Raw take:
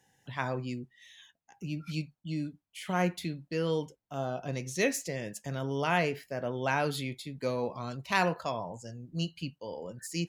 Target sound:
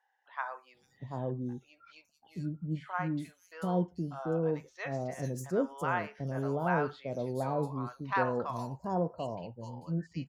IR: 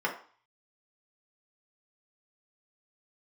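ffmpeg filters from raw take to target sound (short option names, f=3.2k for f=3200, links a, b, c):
-filter_complex "[0:a]highshelf=f=1.8k:t=q:w=1.5:g=-10.5,acrossover=split=770|4700[a][b][c];[c]adelay=440[d];[a]adelay=740[e];[e][b][d]amix=inputs=3:normalize=0"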